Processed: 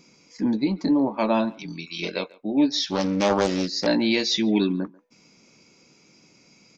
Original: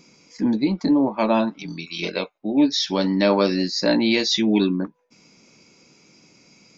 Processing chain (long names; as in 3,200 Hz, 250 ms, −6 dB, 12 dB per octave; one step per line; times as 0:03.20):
far-end echo of a speakerphone 140 ms, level −22 dB
0:02.78–0:03.87: highs frequency-modulated by the lows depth 0.37 ms
level −2.5 dB